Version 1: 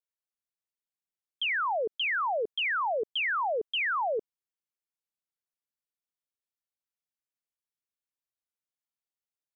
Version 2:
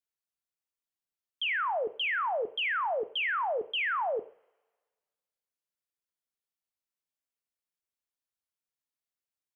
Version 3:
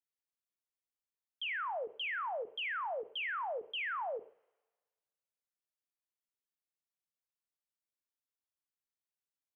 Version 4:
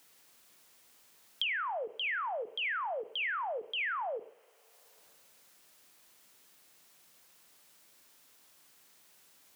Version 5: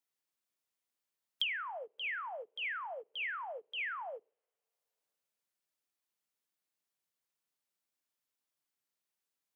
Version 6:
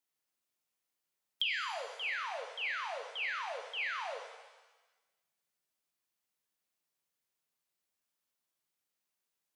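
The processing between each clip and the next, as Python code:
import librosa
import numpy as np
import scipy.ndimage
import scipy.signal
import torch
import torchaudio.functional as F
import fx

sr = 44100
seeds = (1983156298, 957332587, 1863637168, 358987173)

y1 = fx.rev_double_slope(x, sr, seeds[0], early_s=0.48, late_s=1.7, knee_db=-27, drr_db=12.0)
y1 = y1 * librosa.db_to_amplitude(-1.5)
y2 = fx.end_taper(y1, sr, db_per_s=340.0)
y2 = y2 * librosa.db_to_amplitude(-7.5)
y3 = fx.band_squash(y2, sr, depth_pct=100)
y3 = y3 * librosa.db_to_amplitude(2.0)
y4 = fx.upward_expand(y3, sr, threshold_db=-49.0, expansion=2.5)
y4 = y4 * librosa.db_to_amplitude(1.5)
y5 = fx.rev_shimmer(y4, sr, seeds[1], rt60_s=1.1, semitones=7, shimmer_db=-8, drr_db=3.0)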